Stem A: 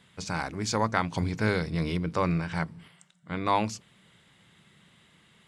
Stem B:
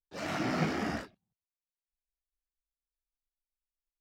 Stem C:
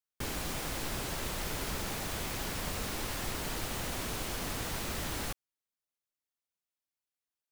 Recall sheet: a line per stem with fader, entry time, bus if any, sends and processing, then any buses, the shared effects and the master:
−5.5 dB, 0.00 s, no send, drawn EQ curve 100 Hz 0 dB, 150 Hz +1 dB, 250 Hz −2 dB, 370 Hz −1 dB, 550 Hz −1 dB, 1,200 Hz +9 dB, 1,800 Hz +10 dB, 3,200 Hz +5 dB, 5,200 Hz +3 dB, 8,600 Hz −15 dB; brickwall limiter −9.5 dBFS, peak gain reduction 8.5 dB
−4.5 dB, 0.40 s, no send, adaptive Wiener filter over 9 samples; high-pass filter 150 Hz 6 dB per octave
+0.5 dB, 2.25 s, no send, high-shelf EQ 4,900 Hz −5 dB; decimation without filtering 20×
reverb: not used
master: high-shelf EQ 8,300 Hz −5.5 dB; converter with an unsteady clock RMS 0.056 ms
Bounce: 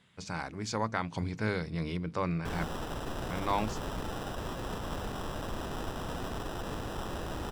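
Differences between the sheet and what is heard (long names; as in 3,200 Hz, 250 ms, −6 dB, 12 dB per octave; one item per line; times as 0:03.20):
stem A: missing drawn EQ curve 100 Hz 0 dB, 150 Hz +1 dB, 250 Hz −2 dB, 370 Hz −1 dB, 550 Hz −1 dB, 1,200 Hz +9 dB, 1,800 Hz +10 dB, 3,200 Hz +5 dB, 5,200 Hz +3 dB, 8,600 Hz −15 dB
stem B: muted
master: missing converter with an unsteady clock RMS 0.056 ms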